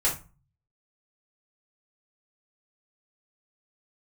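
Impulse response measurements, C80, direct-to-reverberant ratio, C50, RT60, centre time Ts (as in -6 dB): 16.5 dB, -7.5 dB, 9.0 dB, 0.35 s, 24 ms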